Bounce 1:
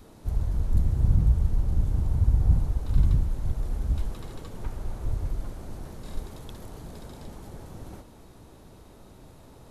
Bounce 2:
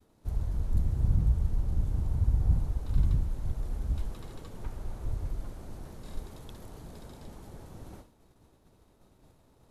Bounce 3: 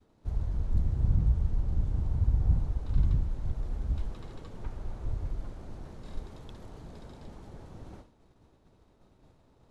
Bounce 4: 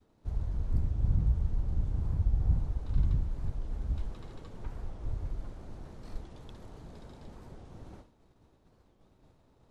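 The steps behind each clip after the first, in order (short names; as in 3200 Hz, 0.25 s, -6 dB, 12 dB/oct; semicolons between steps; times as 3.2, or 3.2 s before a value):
expander -42 dBFS; gain -4.5 dB
air absorption 72 m
record warp 45 rpm, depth 250 cents; gain -2 dB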